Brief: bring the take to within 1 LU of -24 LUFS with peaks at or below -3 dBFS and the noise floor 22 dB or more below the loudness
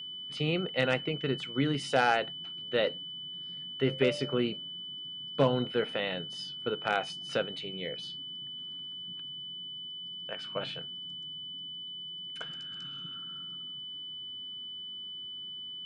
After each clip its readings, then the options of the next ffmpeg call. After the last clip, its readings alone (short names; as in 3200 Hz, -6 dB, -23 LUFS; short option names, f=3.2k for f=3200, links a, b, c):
steady tone 3000 Hz; tone level -39 dBFS; loudness -33.5 LUFS; peak -12.0 dBFS; loudness target -24.0 LUFS
-> -af "bandreject=f=3k:w=30"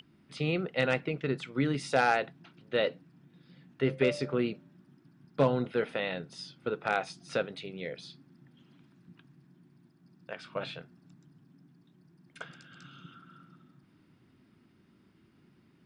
steady tone none; loudness -32.0 LUFS; peak -12.5 dBFS; loudness target -24.0 LUFS
-> -af "volume=8dB"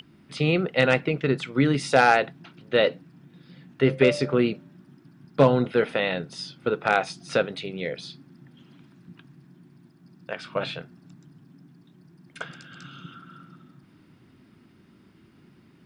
loudness -24.0 LUFS; peak -4.5 dBFS; noise floor -57 dBFS